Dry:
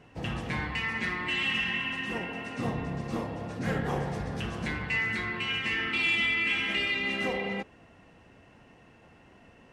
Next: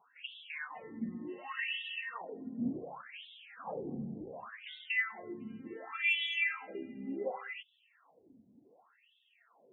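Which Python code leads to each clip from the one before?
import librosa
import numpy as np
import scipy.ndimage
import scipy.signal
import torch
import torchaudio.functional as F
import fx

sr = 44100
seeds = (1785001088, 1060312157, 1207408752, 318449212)

y = fx.halfwave_hold(x, sr)
y = fx.wah_lfo(y, sr, hz=0.68, low_hz=220.0, high_hz=3400.0, q=7.6)
y = fx.spec_topn(y, sr, count=32)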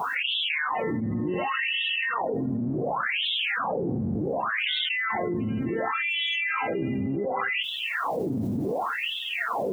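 y = fx.octave_divider(x, sr, octaves=1, level_db=-3.0)
y = scipy.signal.sosfilt(scipy.signal.butter(2, 95.0, 'highpass', fs=sr, output='sos'), y)
y = fx.env_flatten(y, sr, amount_pct=100)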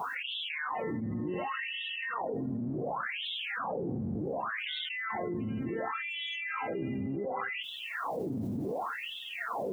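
y = fx.dynamic_eq(x, sr, hz=2700.0, q=1.3, threshold_db=-39.0, ratio=4.0, max_db=-4)
y = y * 10.0 ** (-6.5 / 20.0)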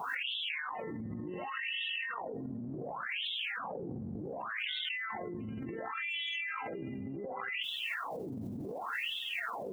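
y = fx.over_compress(x, sr, threshold_db=-39.0, ratio=-1.0)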